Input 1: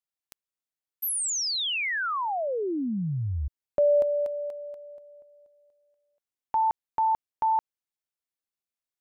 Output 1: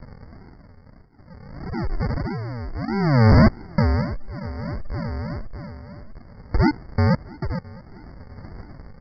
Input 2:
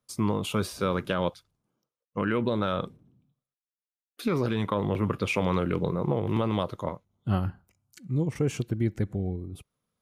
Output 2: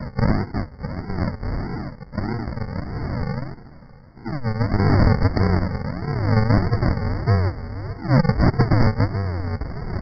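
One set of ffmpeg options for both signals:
-filter_complex "[0:a]aeval=exprs='val(0)+0.5*0.0398*sgn(val(0))':c=same,highshelf=f=2800:g=-7.5,tremolo=f=0.59:d=0.73,acrossover=split=2600[s0][s1];[s1]acompressor=threshold=0.00282:ratio=12:attack=5.1:release=21[s2];[s0][s2]amix=inputs=2:normalize=0,asubboost=boost=4:cutoff=120,aresample=16000,acrusher=samples=38:mix=1:aa=0.000001:lfo=1:lforange=22.8:lforate=1.6,aresample=44100,aeval=exprs='(mod(5.96*val(0)+1,2)-1)/5.96':c=same,aecho=1:1:662|1324|1986|2648:0.0708|0.0404|0.023|0.0131,aresample=11025,aresample=44100,afftfilt=real='re*eq(mod(floor(b*sr/1024/2200),2),0)':imag='im*eq(mod(floor(b*sr/1024/2200),2),0)':win_size=1024:overlap=0.75,volume=2.37"

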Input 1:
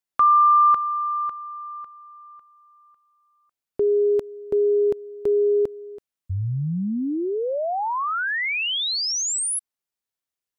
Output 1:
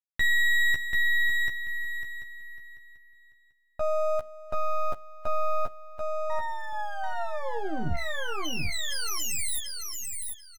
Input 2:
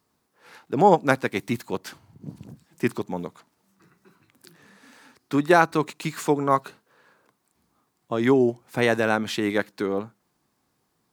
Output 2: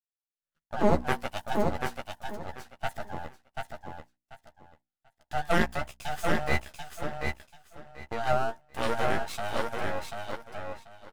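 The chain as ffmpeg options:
-filter_complex "[0:a]afftfilt=real='real(if(between(b,1,1008),(2*floor((b-1)/48)+1)*48-b,b),0)':imag='imag(if(between(b,1,1008),(2*floor((b-1)/48)+1)*48-b,b),0)*if(between(b,1,1008),-1,1)':win_size=2048:overlap=0.75,agate=range=0.00708:threshold=0.00631:ratio=16:release=72:detection=rms,lowshelf=f=150:g=8.5,bandreject=f=60:t=h:w=6,bandreject=f=120:t=h:w=6,bandreject=f=180:t=h:w=6,bandreject=f=240:t=h:w=6,aeval=exprs='max(val(0),0)':c=same,asplit=2[s0][s1];[s1]adelay=13,volume=0.562[s2];[s0][s2]amix=inputs=2:normalize=0,asplit=2[s3][s4];[s4]aecho=0:1:738|1476|2214:0.631|0.133|0.0278[s5];[s3][s5]amix=inputs=2:normalize=0,adynamicequalizer=threshold=0.0126:dfrequency=6900:dqfactor=0.7:tfrequency=6900:tqfactor=0.7:attack=5:release=100:ratio=0.375:range=2:mode=boostabove:tftype=highshelf,volume=0.473"

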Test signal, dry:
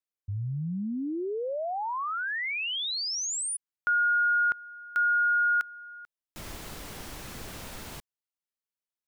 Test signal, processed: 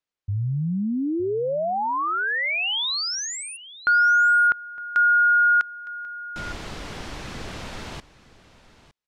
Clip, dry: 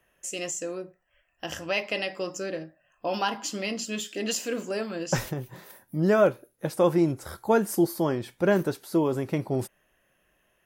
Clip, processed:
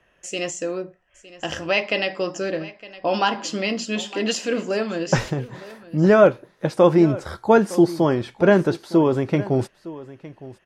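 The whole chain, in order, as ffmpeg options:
-filter_complex "[0:a]lowpass=5200,asplit=2[s0][s1];[s1]aecho=0:1:911:0.126[s2];[s0][s2]amix=inputs=2:normalize=0,volume=2.24"

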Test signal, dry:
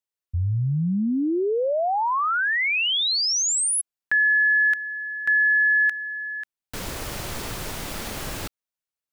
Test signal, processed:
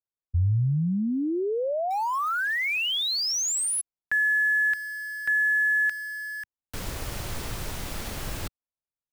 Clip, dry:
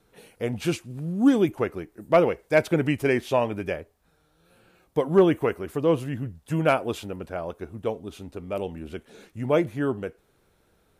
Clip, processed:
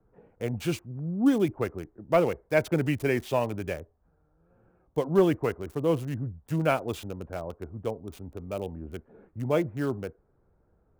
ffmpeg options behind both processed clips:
-filter_complex "[0:a]acrossover=split=130|1400[s0][s1][s2];[s0]acontrast=58[s3];[s2]acrusher=bits=6:mix=0:aa=0.000001[s4];[s3][s1][s4]amix=inputs=3:normalize=0,volume=0.631"

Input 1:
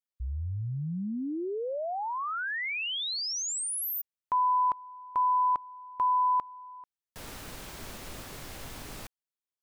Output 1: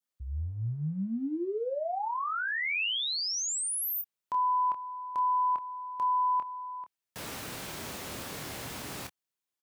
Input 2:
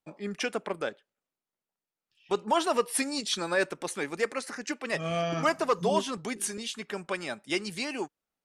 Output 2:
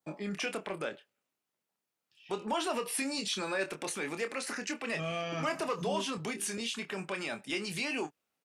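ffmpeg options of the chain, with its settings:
-filter_complex "[0:a]highpass=97,adynamicequalizer=threshold=0.00316:dfrequency=2600:dqfactor=2.7:tfrequency=2600:tqfactor=2.7:attack=5:release=100:ratio=0.375:range=3:mode=boostabove:tftype=bell,acompressor=threshold=0.0158:ratio=2.5:attack=0.23:release=79:knee=1:detection=peak,asplit=2[s0][s1];[s1]adelay=26,volume=0.422[s2];[s0][s2]amix=inputs=2:normalize=0,volume=1.5"

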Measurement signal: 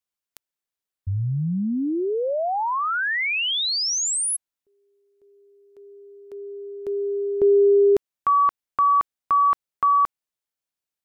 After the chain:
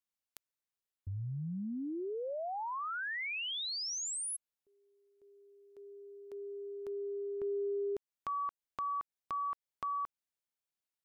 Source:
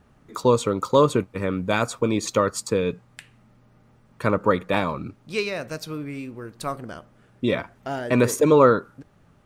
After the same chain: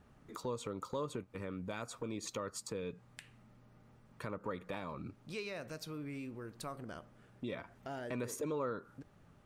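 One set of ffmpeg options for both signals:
-af "acompressor=threshold=0.0178:ratio=2.5:attack=1.2:release=216:knee=6:detection=peak,volume=0.501"

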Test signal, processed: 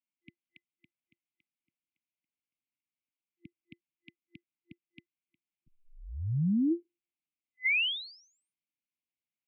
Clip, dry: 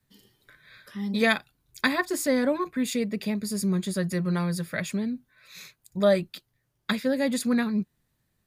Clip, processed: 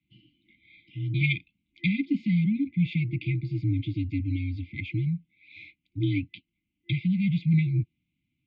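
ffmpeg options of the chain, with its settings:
-af "afftfilt=real='re*(1-between(b*sr/4096,420,2100))':imag='im*(1-between(b*sr/4096,420,2100))':win_size=4096:overlap=0.75,highpass=f=210:t=q:w=0.5412,highpass=f=210:t=q:w=1.307,lowpass=f=3000:t=q:w=0.5176,lowpass=f=3000:t=q:w=0.7071,lowpass=f=3000:t=q:w=1.932,afreqshift=-80,volume=1.58"

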